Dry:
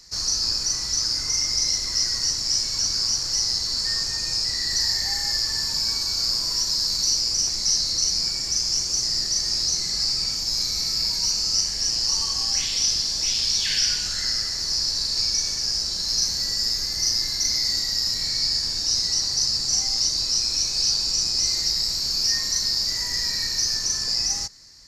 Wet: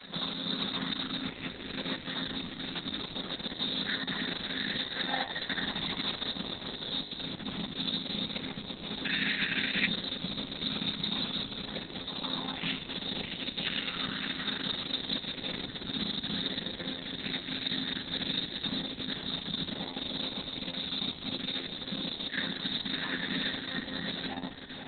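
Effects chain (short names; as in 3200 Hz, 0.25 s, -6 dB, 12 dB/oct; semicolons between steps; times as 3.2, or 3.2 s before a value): chord vocoder minor triad, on F3; reverb RT60 0.35 s, pre-delay 18 ms, DRR 10.5 dB; limiter -16.5 dBFS, peak gain reduction 11.5 dB; diffused feedback echo 0.55 s, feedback 49%, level -10 dB; 7.27–7.76 dynamic EQ 5900 Hz, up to -5 dB, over -38 dBFS, Q 0.9; upward compressor, threshold -31 dBFS; 9.05–9.87 band shelf 2100 Hz +16 dB 1.1 oct; 22.07–22.81 HPF 260 Hz -> 66 Hz 12 dB/oct; notches 50/100/150/200/250/300/350/400/450 Hz; Opus 6 kbps 48000 Hz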